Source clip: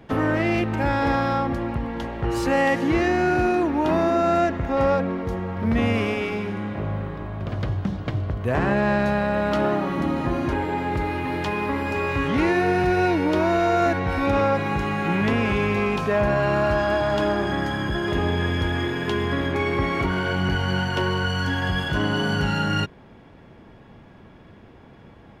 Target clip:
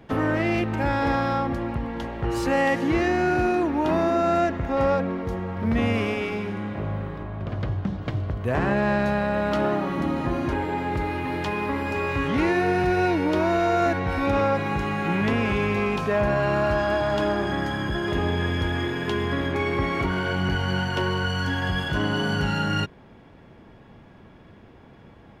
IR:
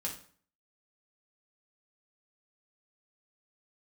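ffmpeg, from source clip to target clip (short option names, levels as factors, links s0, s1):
-filter_complex "[0:a]asettb=1/sr,asplit=3[s0][s1][s2];[s0]atrim=end=7.234[s3];[s1]atrim=start=7.23:end=8.02,asetpts=PTS-STARTPTS,afade=t=in:d=0.004:c=qsin,afade=t=out:st=0.786:d=0.004:c=qsin,highshelf=f=4800:g=-7.5[s4];[s2]atrim=start=8.016[s5];[s3][s4]acrossfade=d=0.004:c1=hsin:c2=qsin[s6];[s6][s5]acrossfade=d=0.004:c1=qsin:c2=hsin,volume=0.841"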